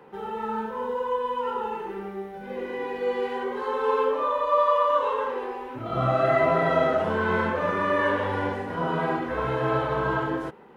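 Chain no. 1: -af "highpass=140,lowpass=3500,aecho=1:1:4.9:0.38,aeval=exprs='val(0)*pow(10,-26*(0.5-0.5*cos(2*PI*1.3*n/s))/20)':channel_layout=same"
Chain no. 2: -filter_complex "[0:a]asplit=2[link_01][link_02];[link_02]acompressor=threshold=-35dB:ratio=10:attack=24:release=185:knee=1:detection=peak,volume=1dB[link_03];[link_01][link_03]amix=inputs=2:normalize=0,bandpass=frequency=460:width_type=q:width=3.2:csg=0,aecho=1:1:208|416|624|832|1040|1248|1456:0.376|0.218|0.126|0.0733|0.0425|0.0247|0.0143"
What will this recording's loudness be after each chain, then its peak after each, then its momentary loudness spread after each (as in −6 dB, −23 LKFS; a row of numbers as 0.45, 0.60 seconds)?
−30.0, −29.0 LKFS; −9.5, −16.0 dBFS; 19, 7 LU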